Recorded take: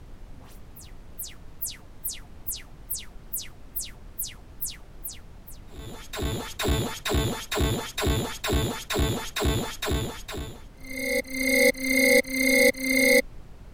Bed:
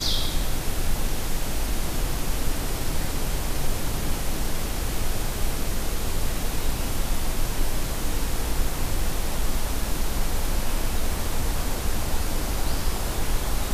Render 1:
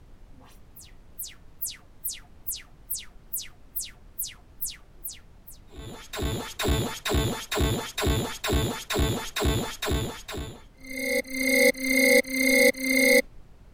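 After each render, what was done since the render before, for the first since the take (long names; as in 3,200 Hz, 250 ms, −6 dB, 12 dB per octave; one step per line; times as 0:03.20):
noise reduction from a noise print 6 dB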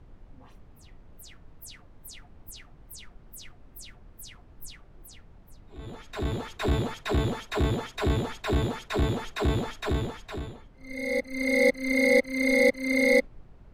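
low-pass filter 1,800 Hz 6 dB per octave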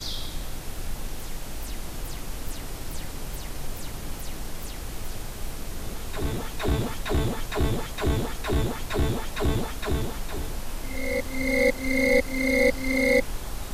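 mix in bed −8 dB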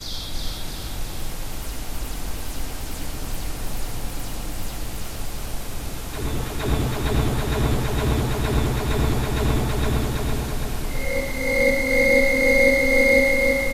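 repeating echo 329 ms, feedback 55%, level −3 dB
reverb whose tail is shaped and stops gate 140 ms rising, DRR 2 dB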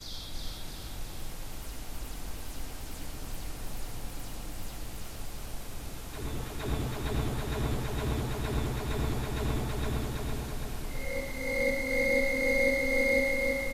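level −10 dB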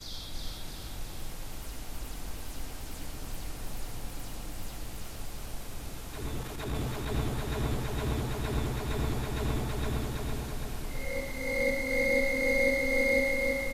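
0:06.41–0:07.08: transient designer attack −7 dB, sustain +2 dB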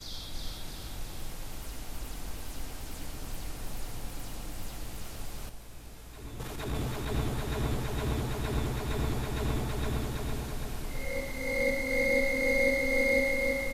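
0:05.49–0:06.40: tuned comb filter 56 Hz, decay 0.78 s, mix 70%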